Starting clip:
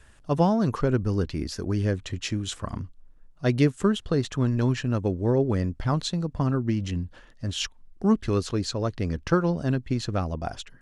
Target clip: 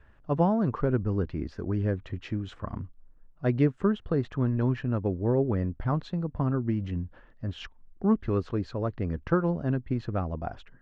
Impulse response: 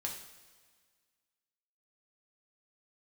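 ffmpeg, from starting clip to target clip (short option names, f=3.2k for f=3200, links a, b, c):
-af "lowpass=1.8k,volume=-2.5dB"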